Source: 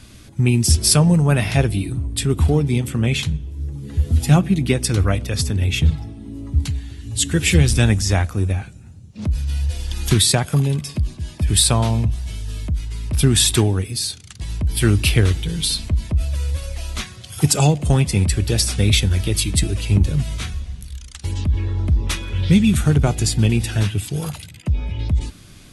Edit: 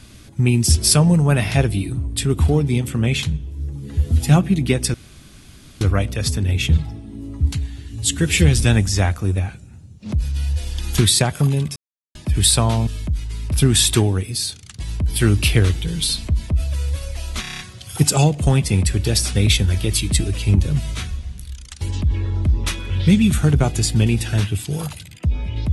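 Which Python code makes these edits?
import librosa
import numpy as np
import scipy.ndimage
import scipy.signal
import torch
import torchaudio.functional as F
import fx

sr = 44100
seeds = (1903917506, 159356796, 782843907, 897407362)

y = fx.edit(x, sr, fx.insert_room_tone(at_s=4.94, length_s=0.87),
    fx.silence(start_s=10.89, length_s=0.39),
    fx.cut(start_s=12.0, length_s=0.48),
    fx.stutter(start_s=17.02, slice_s=0.03, count=7), tone=tone)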